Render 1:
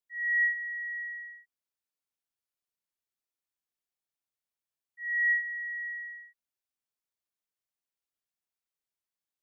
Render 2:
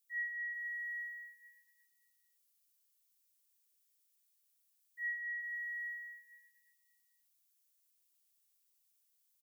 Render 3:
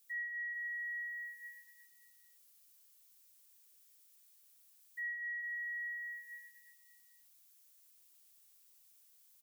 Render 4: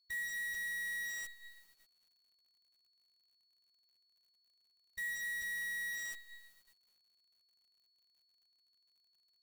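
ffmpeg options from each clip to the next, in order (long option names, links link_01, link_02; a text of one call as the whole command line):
ffmpeg -i in.wav -af "aderivative,alimiter=level_in=20dB:limit=-24dB:level=0:latency=1,volume=-20dB,aecho=1:1:116|232|348|464|580|696|812|928:0.631|0.372|0.22|0.13|0.0765|0.0451|0.0266|0.0157,volume=11dB" out.wav
ffmpeg -i in.wav -af "acompressor=threshold=-54dB:ratio=3,volume=10.5dB" out.wav
ffmpeg -i in.wav -af "agate=range=-10dB:threshold=-60dB:ratio=16:detection=peak,acrusher=bits=8:dc=4:mix=0:aa=0.000001,aeval=exprs='val(0)+0.000224*sin(2*PI*4400*n/s)':channel_layout=same" out.wav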